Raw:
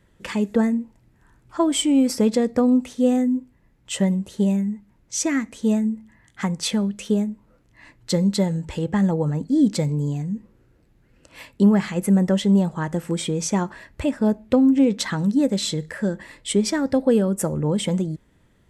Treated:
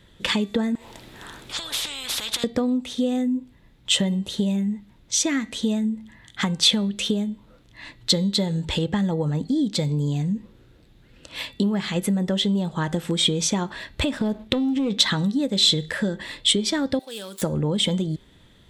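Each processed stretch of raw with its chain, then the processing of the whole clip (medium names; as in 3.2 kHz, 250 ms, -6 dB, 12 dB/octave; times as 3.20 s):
0.75–2.44 s: compression, threshold -27 dBFS + spectrum-flattening compressor 10:1
14.01–14.93 s: waveshaping leveller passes 1 + compression 4:1, threshold -21 dBFS
16.99–17.42 s: median filter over 15 samples + differentiator + level flattener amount 50%
whole clip: compression 5:1, threshold -26 dBFS; peaking EQ 3.6 kHz +13.5 dB 0.59 oct; de-hum 388.4 Hz, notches 12; trim +5 dB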